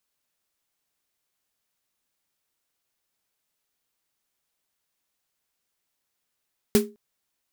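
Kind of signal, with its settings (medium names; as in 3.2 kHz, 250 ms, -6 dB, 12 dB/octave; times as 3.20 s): snare drum length 0.21 s, tones 220 Hz, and 410 Hz, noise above 690 Hz, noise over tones -6.5 dB, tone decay 0.28 s, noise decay 0.17 s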